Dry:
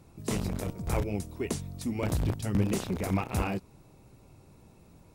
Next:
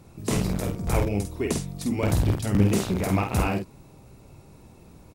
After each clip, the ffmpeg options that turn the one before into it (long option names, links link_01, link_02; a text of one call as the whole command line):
ffmpeg -i in.wav -filter_complex "[0:a]asplit=2[link_01][link_02];[link_02]adelay=49,volume=-5dB[link_03];[link_01][link_03]amix=inputs=2:normalize=0,volume=5dB" out.wav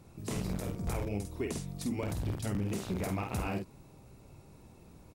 ffmpeg -i in.wav -af "alimiter=limit=-19.5dB:level=0:latency=1:release=188,volume=-5.5dB" out.wav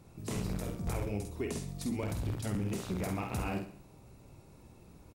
ffmpeg -i in.wav -af "aecho=1:1:66|132|198|264:0.282|0.118|0.0497|0.0209,volume=-1dB" out.wav